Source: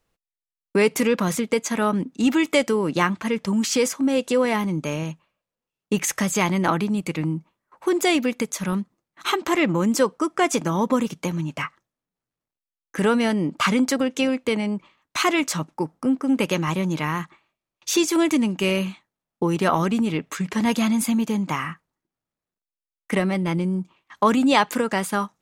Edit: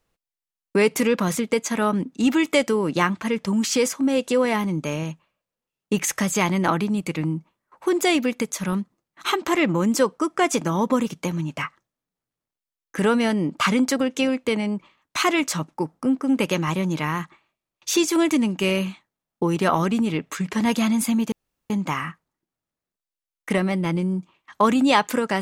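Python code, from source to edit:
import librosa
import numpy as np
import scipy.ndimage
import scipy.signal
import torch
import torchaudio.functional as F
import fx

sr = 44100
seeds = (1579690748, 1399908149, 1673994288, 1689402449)

y = fx.edit(x, sr, fx.insert_room_tone(at_s=21.32, length_s=0.38), tone=tone)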